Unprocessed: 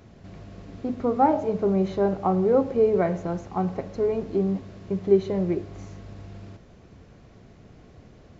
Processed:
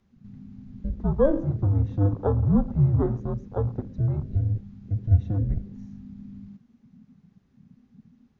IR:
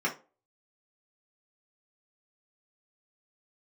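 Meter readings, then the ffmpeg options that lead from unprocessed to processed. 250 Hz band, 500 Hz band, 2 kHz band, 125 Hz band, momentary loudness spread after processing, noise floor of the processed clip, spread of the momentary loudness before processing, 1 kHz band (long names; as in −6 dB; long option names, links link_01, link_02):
−2.5 dB, −7.5 dB, can't be measured, +10.0 dB, 20 LU, −65 dBFS, 21 LU, −12.5 dB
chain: -af "afwtdn=0.0224,afreqshift=-300"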